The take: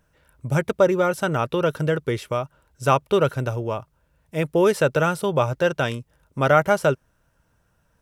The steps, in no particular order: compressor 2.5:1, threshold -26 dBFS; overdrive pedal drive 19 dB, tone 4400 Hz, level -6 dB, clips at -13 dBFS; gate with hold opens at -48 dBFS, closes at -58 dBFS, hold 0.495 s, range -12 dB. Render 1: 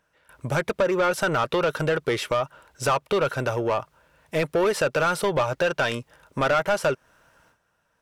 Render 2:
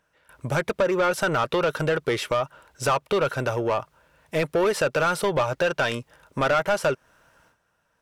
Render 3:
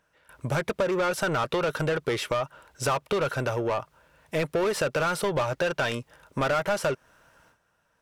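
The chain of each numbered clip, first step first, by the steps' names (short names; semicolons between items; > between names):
gate with hold > compressor > overdrive pedal; compressor > gate with hold > overdrive pedal; gate with hold > overdrive pedal > compressor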